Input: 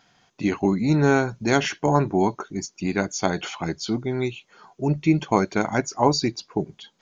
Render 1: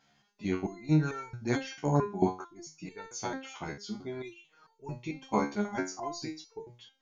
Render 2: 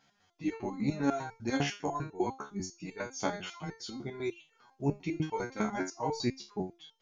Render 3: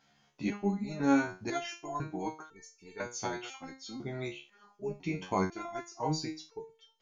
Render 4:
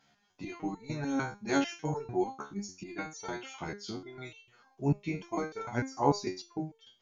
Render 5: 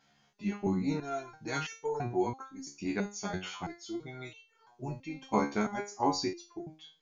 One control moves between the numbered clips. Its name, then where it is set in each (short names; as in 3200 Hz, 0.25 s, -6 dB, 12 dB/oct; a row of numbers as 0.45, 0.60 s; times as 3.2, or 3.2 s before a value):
stepped resonator, rate: 4.5, 10, 2, 6.7, 3 Hz